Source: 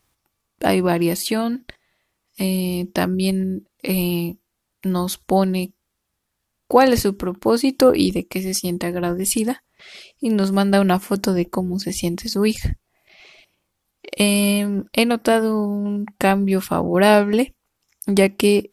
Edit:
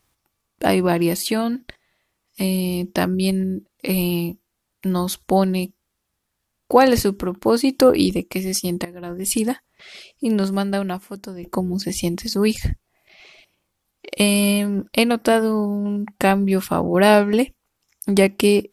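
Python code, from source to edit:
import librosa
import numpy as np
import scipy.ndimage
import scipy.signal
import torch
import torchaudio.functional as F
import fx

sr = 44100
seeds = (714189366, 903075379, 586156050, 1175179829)

y = fx.edit(x, sr, fx.fade_in_from(start_s=8.85, length_s=0.5, curve='qua', floor_db=-15.5),
    fx.fade_out_to(start_s=10.3, length_s=1.13, curve='qua', floor_db=-15.0), tone=tone)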